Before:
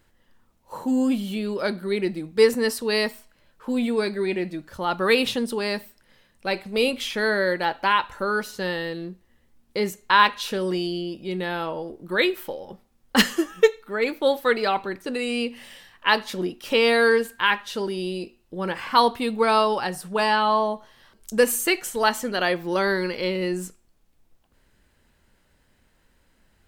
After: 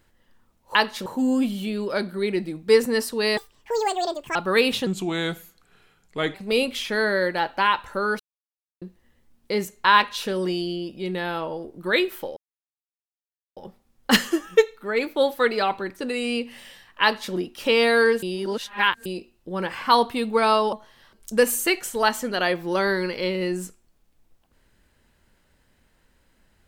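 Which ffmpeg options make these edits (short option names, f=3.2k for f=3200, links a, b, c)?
-filter_complex "[0:a]asplit=13[a][b][c][d][e][f][g][h][i][j][k][l][m];[a]atrim=end=0.752[n];[b]atrim=start=16.078:end=16.392[o];[c]atrim=start=0.748:end=3.064[p];[d]atrim=start=3.06:end=4.89,asetpts=PTS-STARTPTS,asetrate=82026,aresample=44100[q];[e]atrim=start=4.886:end=5.404[r];[f]atrim=start=5.4:end=6.6,asetpts=PTS-STARTPTS,asetrate=35721,aresample=44100,atrim=end_sample=65333,asetpts=PTS-STARTPTS[s];[g]atrim=start=6.596:end=8.45,asetpts=PTS-STARTPTS,afade=t=out:st=1.85:d=0.004:c=hsin[t];[h]atrim=start=8.45:end=9.07,asetpts=PTS-STARTPTS,volume=0[u];[i]atrim=start=9.07:end=12.62,asetpts=PTS-STARTPTS,afade=t=in:d=0.004:c=hsin,afade=t=out:st=3.546:d=0.004:c=hsin,apad=pad_dur=1.2[v];[j]atrim=start=12.62:end=17.282,asetpts=PTS-STARTPTS,afade=t=in:d=0.004:c=hsin[w];[k]atrim=start=17.278:end=18.112,asetpts=PTS-STARTPTS,areverse[x];[l]atrim=start=18.108:end=19.782[y];[m]atrim=start=20.728[z];[n][o]acrossfade=d=0.004:c1=hsin:c2=hsin[aa];[aa][p]acrossfade=d=0.004:c1=hsin:c2=hsin[ab];[ab][q]acrossfade=d=0.004:c1=hsin:c2=hsin[ac];[ac][r]acrossfade=d=0.004:c1=hsin:c2=hsin[ad];[ad][s]acrossfade=d=0.004:c1=hsin:c2=hsin[ae];[t][u][v][w]concat=n=4:v=0:a=1[af];[ae][af]acrossfade=d=0.004:c1=hsin:c2=hsin[ag];[ag][x]acrossfade=d=0.004:c1=hsin:c2=hsin[ah];[ah][y]acrossfade=d=0.004:c1=hsin:c2=hsin[ai];[ai][z]acrossfade=d=0.004:c1=hsin:c2=hsin"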